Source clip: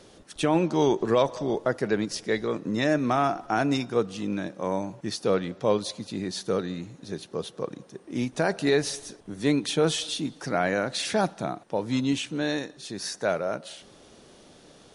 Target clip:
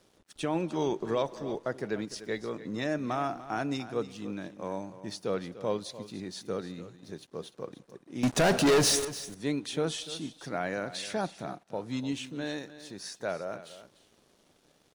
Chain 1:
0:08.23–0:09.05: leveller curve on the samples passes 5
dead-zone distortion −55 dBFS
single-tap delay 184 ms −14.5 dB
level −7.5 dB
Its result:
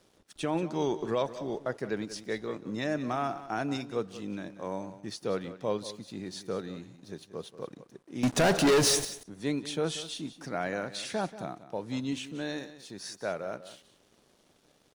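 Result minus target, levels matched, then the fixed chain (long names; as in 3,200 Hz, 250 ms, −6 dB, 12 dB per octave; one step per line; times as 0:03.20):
echo 112 ms early
0:08.23–0:09.05: leveller curve on the samples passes 5
dead-zone distortion −55 dBFS
single-tap delay 296 ms −14.5 dB
level −7.5 dB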